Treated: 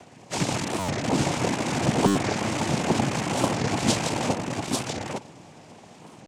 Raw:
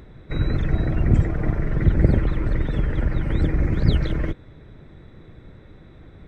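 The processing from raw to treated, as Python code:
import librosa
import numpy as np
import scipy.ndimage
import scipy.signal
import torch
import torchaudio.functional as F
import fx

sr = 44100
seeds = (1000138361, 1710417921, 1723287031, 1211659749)

p1 = fx.rattle_buzz(x, sr, strikes_db=-25.0, level_db=-14.0)
p2 = fx.high_shelf(p1, sr, hz=3300.0, db=10.0)
p3 = fx.fixed_phaser(p2, sr, hz=600.0, stages=6)
p4 = fx.noise_vocoder(p3, sr, seeds[0], bands=4)
p5 = p4 + fx.echo_single(p4, sr, ms=852, db=-3.5, dry=0)
p6 = fx.buffer_glitch(p5, sr, at_s=(0.8, 2.07), block=512, repeats=8)
p7 = fx.record_warp(p6, sr, rpm=45.0, depth_cents=250.0)
y = p7 * librosa.db_to_amplitude(3.5)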